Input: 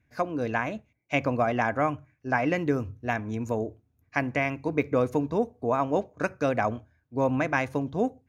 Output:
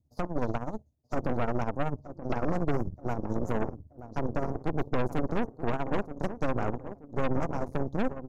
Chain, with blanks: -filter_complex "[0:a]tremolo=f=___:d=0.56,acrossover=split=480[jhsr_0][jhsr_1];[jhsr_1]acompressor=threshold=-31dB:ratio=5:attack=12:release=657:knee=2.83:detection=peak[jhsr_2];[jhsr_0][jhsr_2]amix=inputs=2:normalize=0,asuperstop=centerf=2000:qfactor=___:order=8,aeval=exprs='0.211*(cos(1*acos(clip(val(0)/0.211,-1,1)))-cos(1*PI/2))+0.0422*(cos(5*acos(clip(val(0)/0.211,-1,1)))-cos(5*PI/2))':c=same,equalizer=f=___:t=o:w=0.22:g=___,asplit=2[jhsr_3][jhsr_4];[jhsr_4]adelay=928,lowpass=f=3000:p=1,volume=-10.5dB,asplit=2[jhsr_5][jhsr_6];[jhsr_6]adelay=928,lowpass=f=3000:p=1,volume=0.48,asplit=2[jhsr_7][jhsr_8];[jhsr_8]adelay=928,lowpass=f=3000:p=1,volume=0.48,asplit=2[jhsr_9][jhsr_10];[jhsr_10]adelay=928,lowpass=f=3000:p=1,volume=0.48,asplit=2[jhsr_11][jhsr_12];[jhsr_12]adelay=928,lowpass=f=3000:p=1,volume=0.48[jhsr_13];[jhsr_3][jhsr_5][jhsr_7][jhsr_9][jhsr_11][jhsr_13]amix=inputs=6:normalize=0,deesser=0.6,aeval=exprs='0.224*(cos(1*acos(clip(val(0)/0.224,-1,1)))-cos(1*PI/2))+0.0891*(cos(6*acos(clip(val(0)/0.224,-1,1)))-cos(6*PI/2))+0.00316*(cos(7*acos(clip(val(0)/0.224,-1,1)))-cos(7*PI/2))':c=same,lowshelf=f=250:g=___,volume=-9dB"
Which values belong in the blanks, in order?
16, 0.56, 75, 9, 3.5